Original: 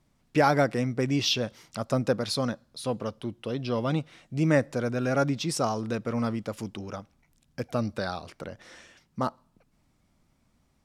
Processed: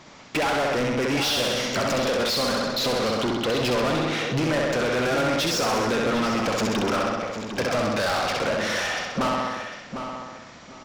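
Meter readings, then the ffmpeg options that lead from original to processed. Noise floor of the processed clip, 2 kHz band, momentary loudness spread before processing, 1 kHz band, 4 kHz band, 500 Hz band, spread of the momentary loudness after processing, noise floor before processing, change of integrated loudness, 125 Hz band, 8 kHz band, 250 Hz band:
−45 dBFS, +9.5 dB, 15 LU, +6.5 dB, +8.5 dB, +5.5 dB, 8 LU, −69 dBFS, +4.5 dB, −1.0 dB, +8.0 dB, +3.0 dB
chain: -filter_complex "[0:a]acompressor=threshold=-31dB:ratio=12,aresample=16000,aresample=44100,asplit=2[link_01][link_02];[link_02]aecho=0:1:65|130|195|260|325|390|455|520:0.562|0.321|0.183|0.104|0.0594|0.0338|0.0193|0.011[link_03];[link_01][link_03]amix=inputs=2:normalize=0,asplit=2[link_04][link_05];[link_05]highpass=frequency=720:poles=1,volume=32dB,asoftclip=type=tanh:threshold=-20dB[link_06];[link_04][link_06]amix=inputs=2:normalize=0,lowpass=frequency=5200:poles=1,volume=-6dB,asplit=2[link_07][link_08];[link_08]adelay=752,lowpass=frequency=3500:poles=1,volume=-8dB,asplit=2[link_09][link_10];[link_10]adelay=752,lowpass=frequency=3500:poles=1,volume=0.23,asplit=2[link_11][link_12];[link_12]adelay=752,lowpass=frequency=3500:poles=1,volume=0.23[link_13];[link_09][link_11][link_13]amix=inputs=3:normalize=0[link_14];[link_07][link_14]amix=inputs=2:normalize=0,volume=3dB"

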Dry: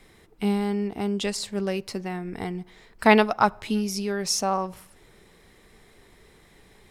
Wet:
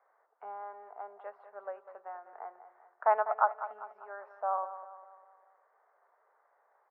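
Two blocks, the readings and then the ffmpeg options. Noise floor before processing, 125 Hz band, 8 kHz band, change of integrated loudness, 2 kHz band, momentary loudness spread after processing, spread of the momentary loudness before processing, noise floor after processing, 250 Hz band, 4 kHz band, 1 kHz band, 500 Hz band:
−56 dBFS, below −40 dB, below −40 dB, −9.5 dB, −14.5 dB, 19 LU, 14 LU, −72 dBFS, below −40 dB, below −40 dB, −5.5 dB, −10.5 dB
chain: -af "asuperpass=centerf=920:order=8:qfactor=1,aecho=1:1:199|398|597|796|995:0.237|0.114|0.0546|0.0262|0.0126,volume=-5.5dB"

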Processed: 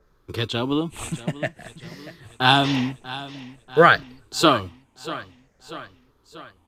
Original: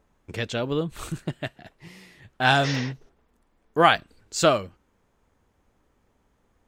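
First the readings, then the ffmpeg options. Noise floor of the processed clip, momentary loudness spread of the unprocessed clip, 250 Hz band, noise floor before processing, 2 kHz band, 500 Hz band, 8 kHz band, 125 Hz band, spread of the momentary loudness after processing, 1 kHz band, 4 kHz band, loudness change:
−62 dBFS, 17 LU, +5.5 dB, −68 dBFS, +3.5 dB, +2.5 dB, −0.5 dB, +2.0 dB, 23 LU, +3.0 dB, +5.0 dB, +2.5 dB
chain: -filter_complex "[0:a]afftfilt=real='re*pow(10,11/40*sin(2*PI*(0.58*log(max(b,1)*sr/1024/100)/log(2)-(-0.51)*(pts-256)/sr)))':imag='im*pow(10,11/40*sin(2*PI*(0.58*log(max(b,1)*sr/1024/100)/log(2)-(-0.51)*(pts-256)/sr)))':win_size=1024:overlap=0.75,acrossover=split=120|470|5900[link_01][link_02][link_03][link_04];[link_01]acrusher=samples=37:mix=1:aa=0.000001[link_05];[link_05][link_02][link_03][link_04]amix=inputs=4:normalize=0,aresample=32000,aresample=44100,aecho=1:1:639|1278|1917|2556|3195:0.15|0.0823|0.0453|0.0249|0.0137,adynamicequalizer=threshold=0.02:dfrequency=1800:dqfactor=0.7:tfrequency=1800:tqfactor=0.7:attack=5:release=100:ratio=0.375:range=2:mode=cutabove:tftype=highshelf,volume=2.5dB"

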